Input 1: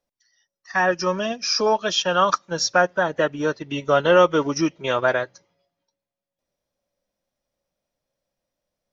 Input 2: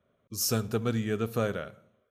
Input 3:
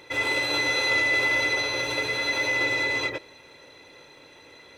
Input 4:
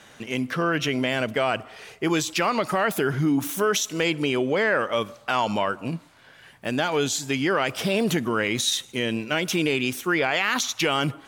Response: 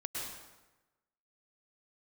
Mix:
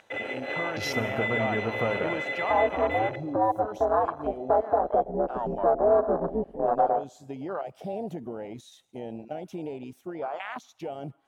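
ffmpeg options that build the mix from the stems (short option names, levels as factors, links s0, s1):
-filter_complex "[0:a]aeval=exprs='val(0)*sin(2*PI*110*n/s)':c=same,lowpass=f=1100:w=0.5412,lowpass=f=1100:w=1.3066,adelay=1750,volume=1.33,asplit=2[s0][s1];[s1]volume=0.0841[s2];[1:a]acompressor=threshold=0.0316:ratio=6,adelay=450,volume=1,asplit=2[s3][s4];[s4]volume=0.355[s5];[2:a]alimiter=limit=0.112:level=0:latency=1:release=270,volume=0.398,asplit=2[s6][s7];[s7]volume=0.631[s8];[3:a]acompressor=mode=upward:threshold=0.0282:ratio=2.5,volume=0.299[s9];[s0][s6][s9]amix=inputs=3:normalize=0,asoftclip=type=tanh:threshold=0.282,acompressor=threshold=0.0224:ratio=2.5,volume=1[s10];[4:a]atrim=start_sample=2205[s11];[s2][s5][s8]amix=inputs=3:normalize=0[s12];[s12][s11]afir=irnorm=-1:irlink=0[s13];[s3][s10][s13]amix=inputs=3:normalize=0,afwtdn=0.02,equalizer=f=720:t=o:w=0.9:g=11"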